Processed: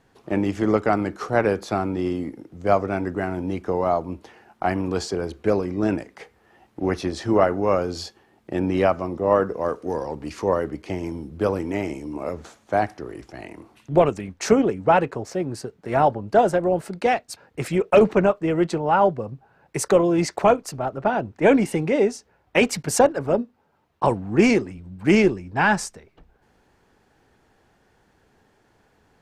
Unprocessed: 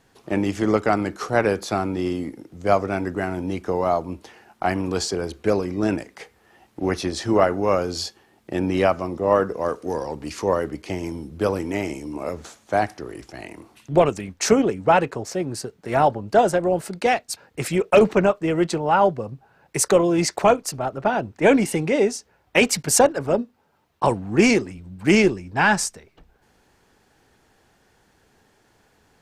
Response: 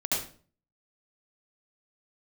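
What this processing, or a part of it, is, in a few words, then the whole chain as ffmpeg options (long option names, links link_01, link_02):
behind a face mask: -af "highshelf=frequency=3100:gain=-8"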